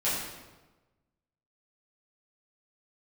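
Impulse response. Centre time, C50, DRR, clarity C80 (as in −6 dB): 72 ms, 0.5 dB, −11.0 dB, 3.0 dB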